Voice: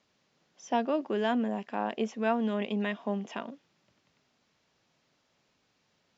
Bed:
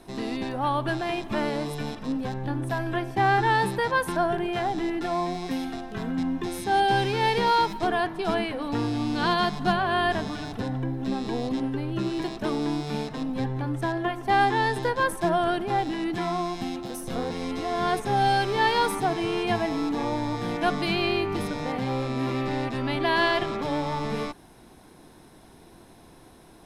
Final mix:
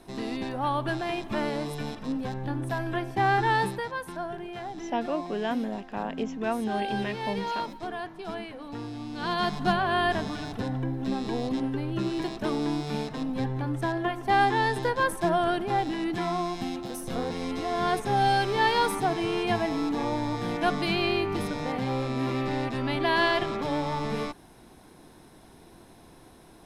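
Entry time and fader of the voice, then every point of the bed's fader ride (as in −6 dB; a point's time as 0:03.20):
4.20 s, −1.0 dB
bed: 0:03.64 −2 dB
0:03.93 −10 dB
0:09.11 −10 dB
0:09.51 −1 dB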